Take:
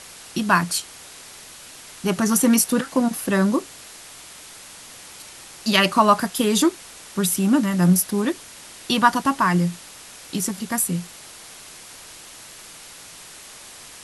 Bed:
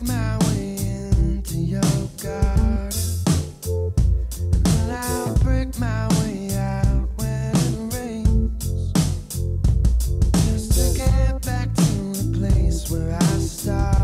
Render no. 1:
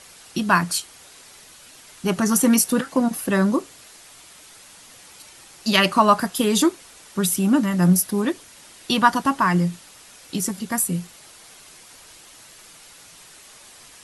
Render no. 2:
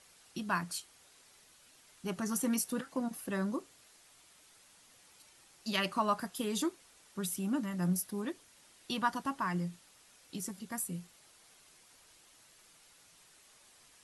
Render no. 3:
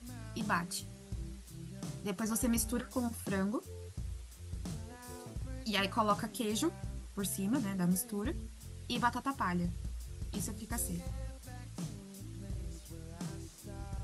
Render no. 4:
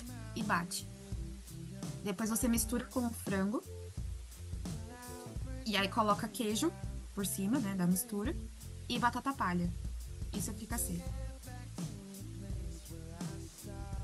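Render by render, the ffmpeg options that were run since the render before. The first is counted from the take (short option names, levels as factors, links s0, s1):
-af "afftdn=nr=6:nf=-42"
-af "volume=0.168"
-filter_complex "[1:a]volume=0.0631[s0];[0:a][s0]amix=inputs=2:normalize=0"
-af "acompressor=mode=upward:threshold=0.00708:ratio=2.5"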